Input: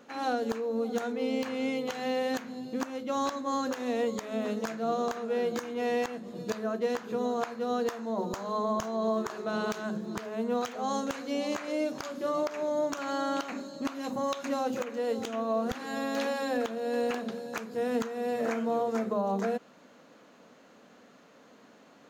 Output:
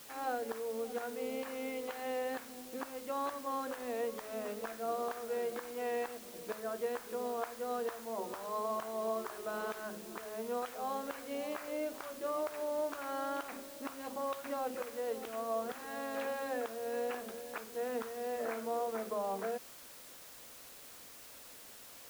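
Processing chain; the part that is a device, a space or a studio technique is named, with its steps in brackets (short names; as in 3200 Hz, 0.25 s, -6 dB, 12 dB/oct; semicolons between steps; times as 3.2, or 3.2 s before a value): wax cylinder (BPF 360–2500 Hz; wow and flutter 21 cents; white noise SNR 14 dB); gain -5.5 dB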